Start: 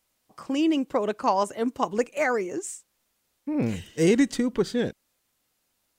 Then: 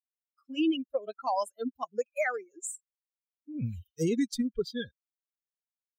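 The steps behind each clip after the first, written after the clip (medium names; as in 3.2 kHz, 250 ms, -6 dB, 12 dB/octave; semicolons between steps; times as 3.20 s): expander on every frequency bin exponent 3; dynamic bell 1.2 kHz, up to -6 dB, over -44 dBFS, Q 1.6; peak limiter -22.5 dBFS, peak gain reduction 9.5 dB; trim +2.5 dB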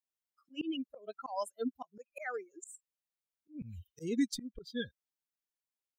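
slow attack 213 ms; trim -1.5 dB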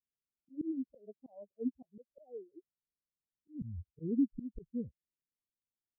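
Gaussian low-pass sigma 23 samples; trim +4.5 dB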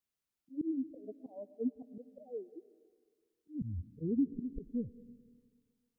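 compression 1.5:1, threshold -41 dBFS, peak gain reduction 6 dB; on a send at -16 dB: reverberation RT60 1.8 s, pre-delay 70 ms; on the sum: trim +4.5 dB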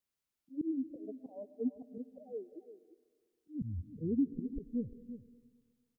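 delay 346 ms -13 dB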